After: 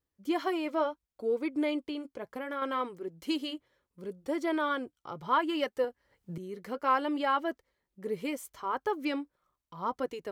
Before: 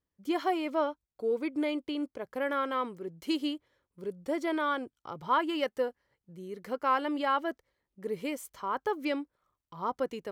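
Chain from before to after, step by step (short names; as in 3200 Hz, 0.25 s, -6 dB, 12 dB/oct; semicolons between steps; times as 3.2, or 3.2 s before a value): 1.86–2.62 compressor, threshold -32 dBFS, peak gain reduction 6.5 dB; flange 0.69 Hz, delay 2.2 ms, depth 3.6 ms, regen -59%; 5.84–6.38 three-band squash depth 100%; gain +4 dB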